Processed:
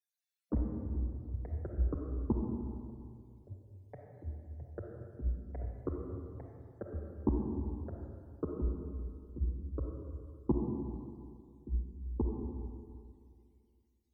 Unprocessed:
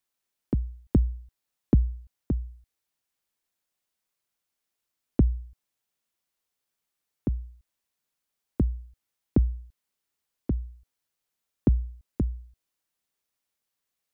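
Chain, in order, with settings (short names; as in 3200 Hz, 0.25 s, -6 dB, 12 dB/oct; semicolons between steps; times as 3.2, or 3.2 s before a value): low shelf 390 Hz -11.5 dB; negative-ratio compressor -33 dBFS, ratio -0.5; loudest bins only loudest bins 16; added harmonics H 3 -15 dB, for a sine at -23 dBFS; chorus voices 6, 0.81 Hz, delay 11 ms, depth 3.3 ms; echoes that change speed 0.1 s, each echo +4 st, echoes 3, each echo -6 dB; digital reverb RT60 2.3 s, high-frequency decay 0.65×, pre-delay 10 ms, DRR 0 dB; gain +10.5 dB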